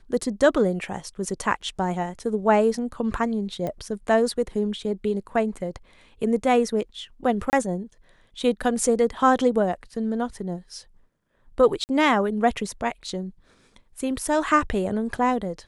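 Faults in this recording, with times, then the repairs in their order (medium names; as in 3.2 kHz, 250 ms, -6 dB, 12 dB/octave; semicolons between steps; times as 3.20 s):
3.67 s: pop -18 dBFS
7.50–7.53 s: dropout 29 ms
11.84–11.89 s: dropout 49 ms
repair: de-click; interpolate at 7.50 s, 29 ms; interpolate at 11.84 s, 49 ms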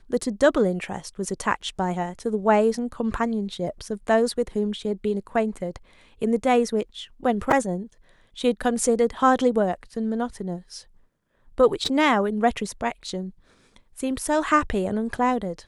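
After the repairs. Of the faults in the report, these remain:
nothing left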